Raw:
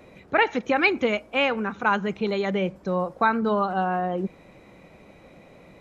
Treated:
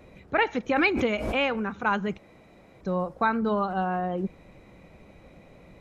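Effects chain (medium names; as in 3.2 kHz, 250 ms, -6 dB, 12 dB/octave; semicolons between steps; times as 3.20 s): bass shelf 100 Hz +11.5 dB; 0.76–1.65 s: swell ahead of each attack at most 46 dB/s; 2.18–2.81 s: room tone; trim -3.5 dB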